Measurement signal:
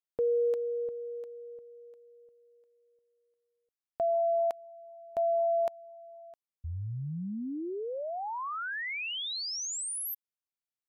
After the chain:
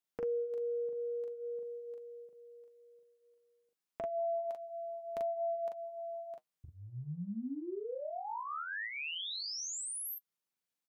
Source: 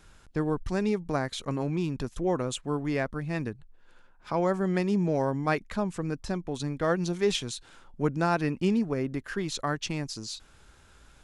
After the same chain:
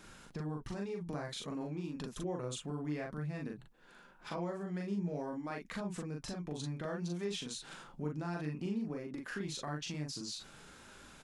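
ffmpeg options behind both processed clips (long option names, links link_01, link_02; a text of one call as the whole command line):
ffmpeg -i in.wav -filter_complex "[0:a]lowshelf=frequency=100:width_type=q:width=1.5:gain=-11,acompressor=threshold=-46dB:ratio=3:attack=5.2:release=130:knee=1:detection=peak,flanger=delay=3.2:depth=4:regen=-57:speed=0.55:shape=triangular,asplit=2[link_01][link_02];[link_02]adelay=40,volume=-2.5dB[link_03];[link_01][link_03]amix=inputs=2:normalize=0,volume=6dB" out.wav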